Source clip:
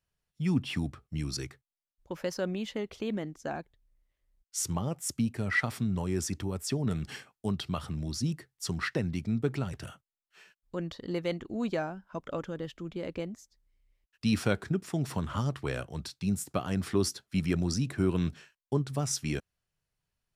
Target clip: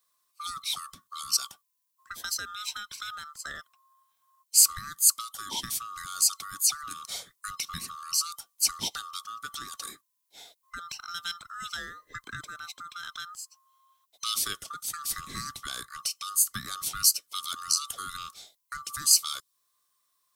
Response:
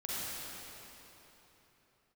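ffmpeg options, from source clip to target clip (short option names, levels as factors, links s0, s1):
-filter_complex "[0:a]afftfilt=real='real(if(lt(b,960),b+48*(1-2*mod(floor(b/48),2)),b),0)':imag='imag(if(lt(b,960),b+48*(1-2*mod(floor(b/48),2)),b),0)':win_size=2048:overlap=0.75,acrossover=split=250|3000[s0][s1][s2];[s1]acompressor=threshold=0.00631:ratio=5[s3];[s0][s3][s2]amix=inputs=3:normalize=0,crystalizer=i=5:c=0"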